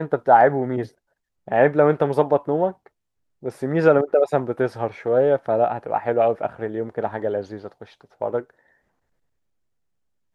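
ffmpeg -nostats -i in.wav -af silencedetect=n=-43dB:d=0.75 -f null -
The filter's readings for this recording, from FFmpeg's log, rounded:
silence_start: 8.50
silence_end: 10.35 | silence_duration: 1.84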